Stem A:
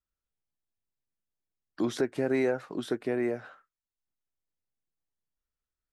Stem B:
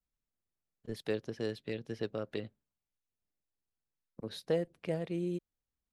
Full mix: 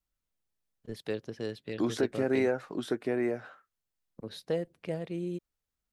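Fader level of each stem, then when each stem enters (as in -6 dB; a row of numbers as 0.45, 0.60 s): -0.5, 0.0 dB; 0.00, 0.00 s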